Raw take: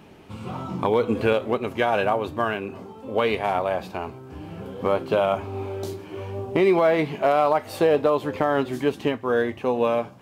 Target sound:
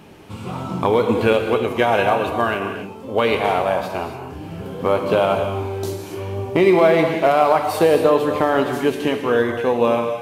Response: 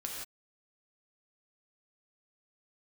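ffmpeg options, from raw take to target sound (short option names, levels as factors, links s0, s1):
-filter_complex "[0:a]asplit=2[s0][s1];[1:a]atrim=start_sample=2205,asetrate=28665,aresample=44100,highshelf=f=5300:g=9.5[s2];[s1][s2]afir=irnorm=-1:irlink=0,volume=0.631[s3];[s0][s3]amix=inputs=2:normalize=0"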